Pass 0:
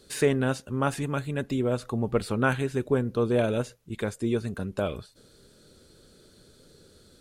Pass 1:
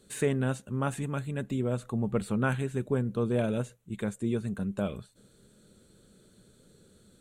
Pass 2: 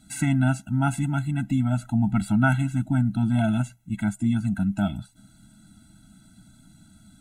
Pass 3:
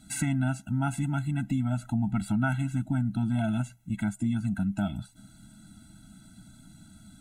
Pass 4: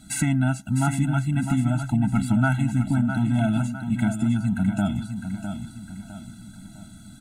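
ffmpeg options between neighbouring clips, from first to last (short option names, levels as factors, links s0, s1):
-af "equalizer=f=125:t=o:w=0.33:g=5,equalizer=f=200:t=o:w=0.33:g=10,equalizer=f=5000:t=o:w=0.33:g=-11,equalizer=f=8000:t=o:w=0.33:g=6,volume=0.531"
-af "afftfilt=real='re*eq(mod(floor(b*sr/1024/320),2),0)':imag='im*eq(mod(floor(b*sr/1024/320),2),0)':win_size=1024:overlap=0.75,volume=2.66"
-af "acompressor=threshold=0.0316:ratio=2,volume=1.12"
-af "aecho=1:1:656|1312|1968|2624|3280:0.398|0.171|0.0736|0.0317|0.0136,volume=1.88"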